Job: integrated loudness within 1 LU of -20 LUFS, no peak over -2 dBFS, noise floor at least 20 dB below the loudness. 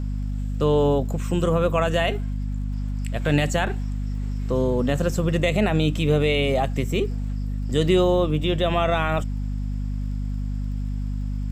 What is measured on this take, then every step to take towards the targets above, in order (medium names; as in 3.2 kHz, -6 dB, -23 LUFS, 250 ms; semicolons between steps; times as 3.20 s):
tick rate 32 per s; hum 50 Hz; highest harmonic 250 Hz; hum level -24 dBFS; loudness -23.5 LUFS; peak level -7.5 dBFS; loudness target -20.0 LUFS
-> de-click; hum notches 50/100/150/200/250 Hz; trim +3.5 dB